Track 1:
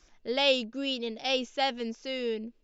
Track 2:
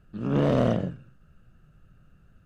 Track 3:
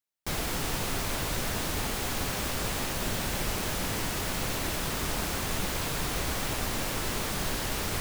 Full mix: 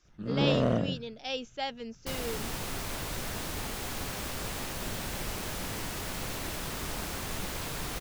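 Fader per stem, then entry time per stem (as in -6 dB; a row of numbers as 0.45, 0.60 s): -6.5, -4.0, -5.0 dB; 0.00, 0.05, 1.80 s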